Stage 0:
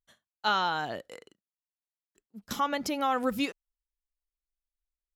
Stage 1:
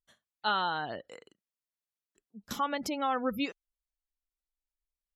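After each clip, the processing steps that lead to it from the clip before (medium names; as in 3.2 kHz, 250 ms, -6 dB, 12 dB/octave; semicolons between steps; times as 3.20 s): spectral gate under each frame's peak -30 dB strong; trim -2.5 dB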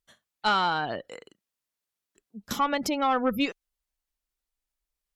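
valve stage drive 20 dB, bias 0.3; trim +7 dB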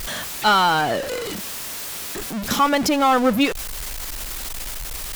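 jump at every zero crossing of -28.5 dBFS; trim +6 dB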